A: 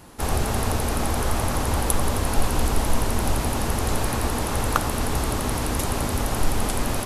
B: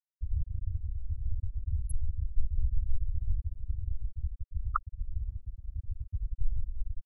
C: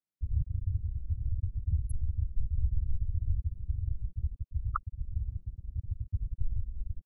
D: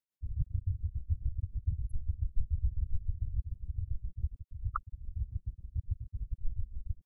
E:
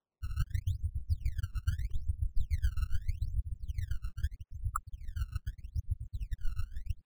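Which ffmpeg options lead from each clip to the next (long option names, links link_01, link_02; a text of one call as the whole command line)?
ffmpeg -i in.wav -af "afftfilt=real='re*gte(hypot(re,im),0.562)':imag='im*gte(hypot(re,im),0.562)':win_size=1024:overlap=0.75,volume=-4.5dB" out.wav
ffmpeg -i in.wav -af "equalizer=frequency=190:width=0.39:gain=14.5,volume=-5.5dB" out.wav
ffmpeg -i in.wav -af "tremolo=f=7.1:d=0.88,volume=1dB" out.wav
ffmpeg -i in.wav -af "acrusher=samples=18:mix=1:aa=0.000001:lfo=1:lforange=28.8:lforate=0.8" out.wav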